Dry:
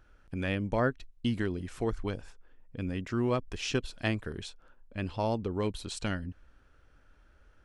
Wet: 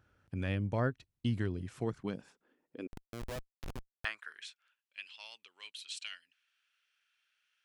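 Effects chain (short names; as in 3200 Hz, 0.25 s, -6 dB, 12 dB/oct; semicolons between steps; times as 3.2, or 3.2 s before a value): high-pass sweep 100 Hz -> 2700 Hz, 1.58–4.8; 2.87–4.05 Schmitt trigger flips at -26 dBFS; gain -6 dB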